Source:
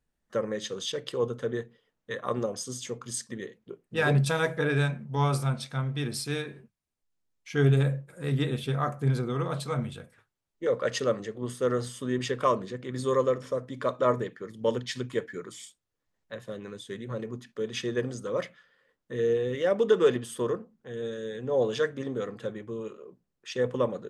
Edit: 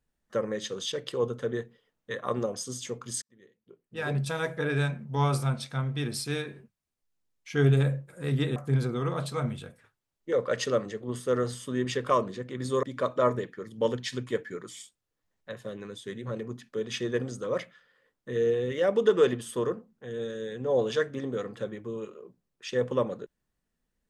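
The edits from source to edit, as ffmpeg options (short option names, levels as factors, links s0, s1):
-filter_complex "[0:a]asplit=4[s0][s1][s2][s3];[s0]atrim=end=3.22,asetpts=PTS-STARTPTS,afade=t=out:st=3.216:d=0.004:c=hsin[s4];[s1]atrim=start=3.22:end=8.562,asetpts=PTS-STARTPTS,afade=t=in:d=1.89[s5];[s2]atrim=start=8.898:end=13.172[s6];[s3]atrim=start=13.658[s7];[s4][s5]concat=n=2:v=0:a=1[s8];[s8][s6]acrossfade=d=0.004:c1=hsin:c2=hsin[s9];[s9][s7]acrossfade=d=0.004:c1=hsin:c2=hsin"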